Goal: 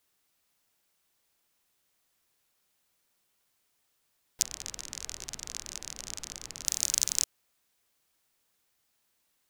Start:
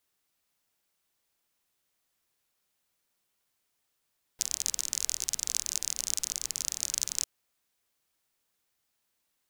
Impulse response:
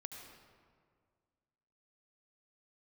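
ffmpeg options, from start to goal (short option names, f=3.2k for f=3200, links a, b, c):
-filter_complex "[0:a]asettb=1/sr,asplit=3[a][b][c];[a]atrim=end=4.424[d];[b]atrim=start=4.42:end=6.66,asetpts=PTS-STARTPTS,afade=t=in:d=0.004:c=qsin,afade=t=out:st=2.236:d=0.004:c=qsin,lowpass=f=1.5k:p=1[e];[c]atrim=start=6.656[f];[d][e]acrossfade=d=0.004:c1=hsin:c2=qsin[g];[g][f]acrossfade=d=0.004:c1=qsin:c2=hsin,volume=3.5dB"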